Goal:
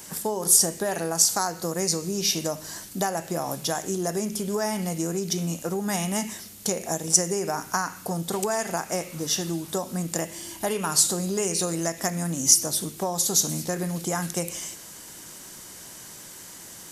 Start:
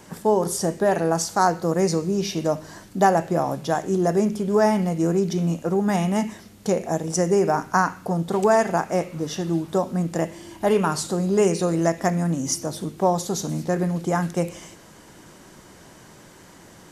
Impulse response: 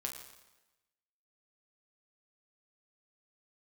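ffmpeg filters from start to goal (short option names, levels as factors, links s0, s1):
-af "acompressor=threshold=0.0891:ratio=6,crystalizer=i=5.5:c=0,volume=0.631"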